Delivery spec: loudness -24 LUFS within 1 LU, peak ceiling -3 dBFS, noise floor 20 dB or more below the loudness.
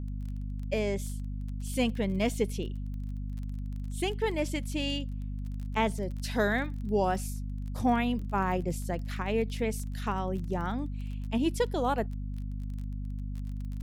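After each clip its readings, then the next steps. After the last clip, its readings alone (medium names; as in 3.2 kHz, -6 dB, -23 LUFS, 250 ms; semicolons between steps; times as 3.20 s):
tick rate 25 per s; hum 50 Hz; highest harmonic 250 Hz; hum level -33 dBFS; loudness -32.5 LUFS; peak level -15.0 dBFS; loudness target -24.0 LUFS
-> de-click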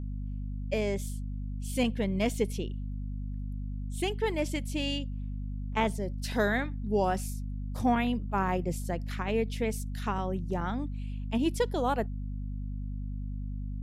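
tick rate 0 per s; hum 50 Hz; highest harmonic 250 Hz; hum level -33 dBFS
-> de-hum 50 Hz, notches 5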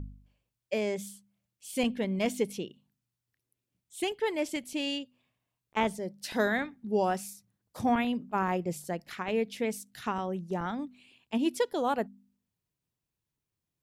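hum not found; loudness -32.0 LUFS; peak level -15.5 dBFS; loudness target -24.0 LUFS
-> trim +8 dB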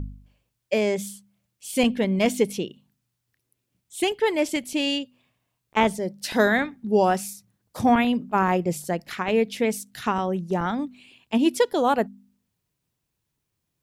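loudness -24.0 LUFS; peak level -7.5 dBFS; noise floor -79 dBFS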